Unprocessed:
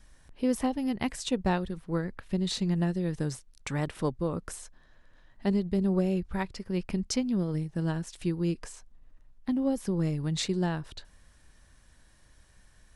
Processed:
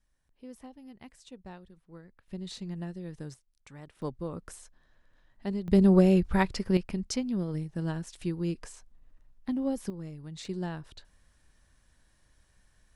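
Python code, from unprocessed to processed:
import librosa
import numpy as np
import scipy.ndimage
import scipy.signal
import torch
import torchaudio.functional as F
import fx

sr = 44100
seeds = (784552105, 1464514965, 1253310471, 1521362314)

y = fx.gain(x, sr, db=fx.steps((0.0, -19.0), (2.28, -10.0), (3.34, -17.0), (4.02, -6.0), (5.68, 6.5), (6.77, -2.5), (9.9, -12.5), (10.45, -6.0)))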